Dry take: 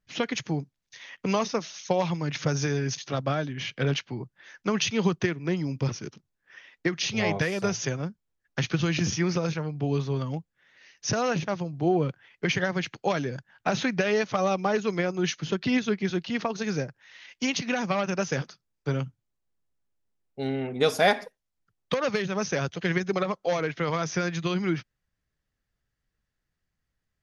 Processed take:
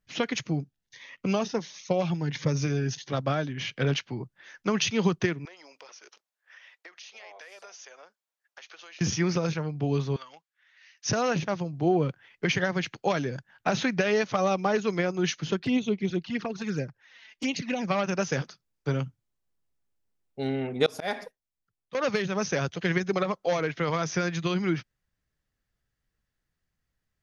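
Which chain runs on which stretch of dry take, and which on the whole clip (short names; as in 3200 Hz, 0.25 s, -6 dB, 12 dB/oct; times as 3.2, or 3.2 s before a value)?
0.44–3.13 tone controls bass +1 dB, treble -5 dB + cascading phaser rising 1.4 Hz
5.45–9.01 HPF 560 Hz 24 dB/oct + compressor 4:1, threshold -47 dBFS
10.16–11.06 HPF 1300 Hz + high shelf 7800 Hz -9.5 dB
15.59–17.88 envelope flanger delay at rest 6 ms, full sweep at -22.5 dBFS + high shelf 5700 Hz -6 dB
20.86–21.95 gate -52 dBFS, range -8 dB + auto swell 0.248 s
whole clip: dry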